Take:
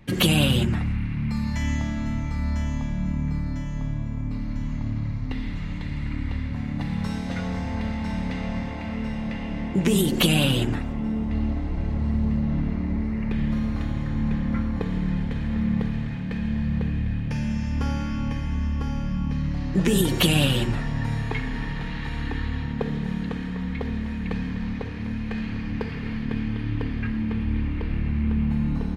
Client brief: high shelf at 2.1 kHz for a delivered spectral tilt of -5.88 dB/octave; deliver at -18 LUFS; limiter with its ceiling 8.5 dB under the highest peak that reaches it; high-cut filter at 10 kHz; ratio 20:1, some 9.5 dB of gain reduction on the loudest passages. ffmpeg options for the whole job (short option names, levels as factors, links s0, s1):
-af "lowpass=10000,highshelf=f=2100:g=5,acompressor=threshold=0.0708:ratio=20,volume=4.22,alimiter=limit=0.398:level=0:latency=1"